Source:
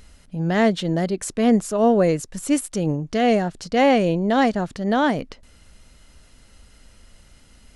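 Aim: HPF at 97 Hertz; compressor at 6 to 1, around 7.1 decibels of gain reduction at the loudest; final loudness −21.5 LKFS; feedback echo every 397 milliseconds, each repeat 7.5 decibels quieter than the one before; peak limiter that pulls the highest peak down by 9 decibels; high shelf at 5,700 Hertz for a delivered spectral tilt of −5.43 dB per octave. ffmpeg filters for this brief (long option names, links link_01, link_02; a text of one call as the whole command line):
ffmpeg -i in.wav -af "highpass=97,highshelf=frequency=5700:gain=-5.5,acompressor=threshold=-20dB:ratio=6,alimiter=limit=-23dB:level=0:latency=1,aecho=1:1:397|794|1191|1588|1985:0.422|0.177|0.0744|0.0312|0.0131,volume=9dB" out.wav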